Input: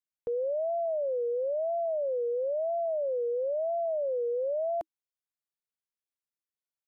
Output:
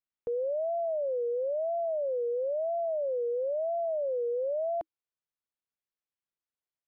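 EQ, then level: distance through air 190 m; 0.0 dB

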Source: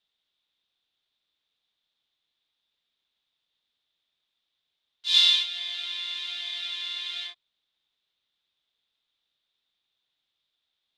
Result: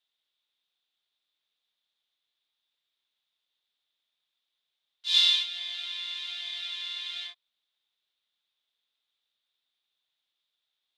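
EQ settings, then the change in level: bass shelf 300 Hz -11 dB; -2.5 dB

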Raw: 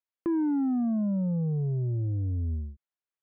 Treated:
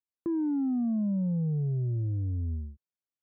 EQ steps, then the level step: high-pass 150 Hz 6 dB/octave; low-pass 1.1 kHz 6 dB/octave; bass shelf 260 Hz +11.5 dB; -6.0 dB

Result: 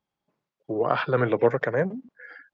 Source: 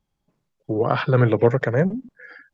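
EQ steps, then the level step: high-pass 450 Hz 6 dB/octave; distance through air 62 m; treble shelf 4.5 kHz -6 dB; 0.0 dB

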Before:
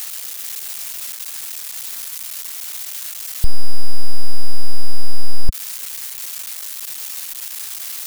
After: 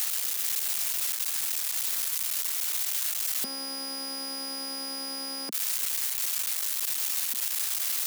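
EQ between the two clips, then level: steep high-pass 220 Hz 48 dB/octave; 0.0 dB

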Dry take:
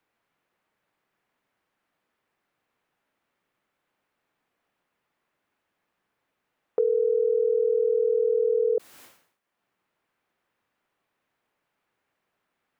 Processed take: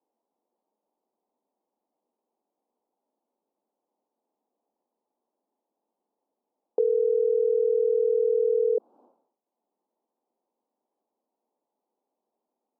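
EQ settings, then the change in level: elliptic band-pass 220–890 Hz, stop band 40 dB; 0.0 dB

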